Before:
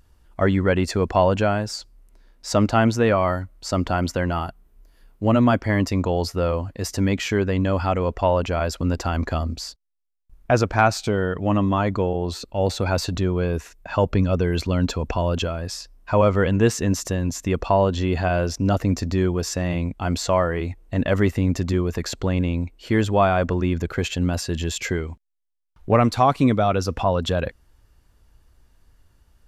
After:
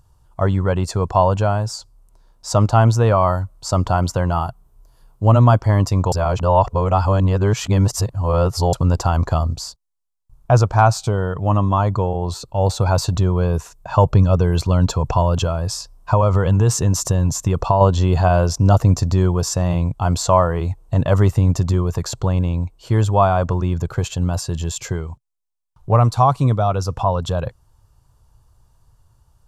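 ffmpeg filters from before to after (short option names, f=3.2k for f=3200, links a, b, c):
-filter_complex "[0:a]asettb=1/sr,asplit=3[a][b][c];[a]atrim=end=15.224[d];[b]atrim=start=15.22:end=17.81,asetpts=PTS-STARTPTS,afade=t=in:d=0.004:c=qsin,afade=t=out:st=2.586:d=0.004:c=qsin,acompressor=threshold=-18dB:ratio=6:attack=3.2:release=140:knee=1:detection=peak[e];[c]atrim=start=17.806[f];[d][e]acrossfade=d=0.004:c1=hsin:c2=qsin[g];[g][f]acrossfade=d=0.004:c1=qsin:c2=hsin,asplit=3[h][i][j];[h]atrim=end=6.122[k];[i]atrim=start=6.118:end=8.732,asetpts=PTS-STARTPTS,areverse[l];[j]atrim=start=8.728[m];[k][l]acrossfade=d=0.004:c1=hsin:c2=hsin[n];[n][m]acrossfade=d=0.004:c1=hsin:c2=hsin,equalizer=f=125:t=o:w=1:g=12,equalizer=f=250:t=o:w=1:g=-8,equalizer=f=1k:t=o:w=1:g=9,equalizer=f=2k:t=o:w=1:g=-11,equalizer=f=8k:t=o:w=1:g=5,dynaudnorm=f=300:g=11:m=11.5dB,volume=-1dB"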